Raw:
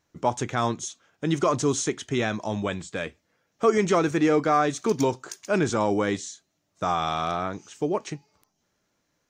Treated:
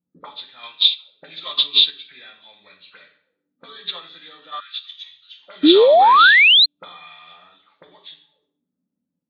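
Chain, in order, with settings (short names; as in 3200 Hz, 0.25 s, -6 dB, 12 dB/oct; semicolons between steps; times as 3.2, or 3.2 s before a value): nonlinear frequency compression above 1200 Hz 1.5:1; auto-wah 220–3500 Hz, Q 6.6, up, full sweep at -28.5 dBFS; 0.63–1.6 high shelf 2400 Hz +8.5 dB; reverb RT60 0.60 s, pre-delay 3 ms, DRR 0 dB; dynamic EQ 1100 Hz, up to +3 dB, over -47 dBFS, Q 0.84; 4.6–5.39 elliptic band-stop 100–1500 Hz, stop band 40 dB; 5.63–6.66 painted sound rise 280–4300 Hz -31 dBFS; maximiser +22 dB; upward expander 2.5:1, over -20 dBFS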